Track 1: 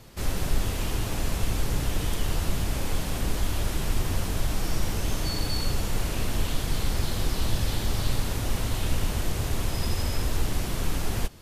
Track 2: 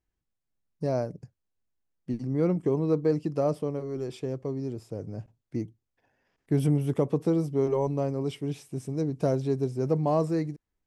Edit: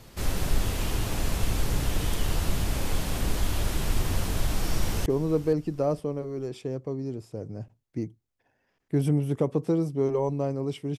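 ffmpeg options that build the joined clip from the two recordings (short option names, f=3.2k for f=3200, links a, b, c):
-filter_complex "[0:a]apad=whole_dur=10.98,atrim=end=10.98,atrim=end=5.062[a];[1:a]atrim=start=2.638:end=8.56[b];[a][b]acrossfade=d=0.004:c1=hsin:c2=hsin,asplit=2[c][d];[d]afade=t=in:st=4.62:d=0.01,afade=t=out:st=5.06:d=0.01,aecho=0:1:470|940|1410:0.141254|0.0423761|0.0127128[e];[c][e]amix=inputs=2:normalize=0"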